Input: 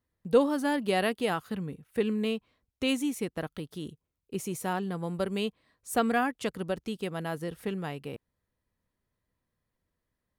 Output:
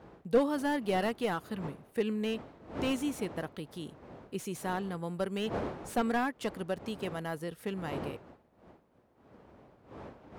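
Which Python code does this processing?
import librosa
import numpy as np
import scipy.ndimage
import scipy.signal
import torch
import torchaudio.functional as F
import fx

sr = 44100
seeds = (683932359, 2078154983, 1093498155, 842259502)

y = fx.dmg_wind(x, sr, seeds[0], corner_hz=520.0, level_db=-43.0)
y = scipy.signal.sosfilt(scipy.signal.butter(2, 53.0, 'highpass', fs=sr, output='sos'), y)
y = fx.low_shelf(y, sr, hz=410.0, db=-3.0)
y = fx.slew_limit(y, sr, full_power_hz=62.0)
y = y * 10.0 ** (-1.5 / 20.0)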